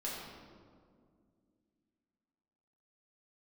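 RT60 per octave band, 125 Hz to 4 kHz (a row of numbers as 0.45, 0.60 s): 2.7, 3.2, 2.4, 1.8, 1.3, 1.1 s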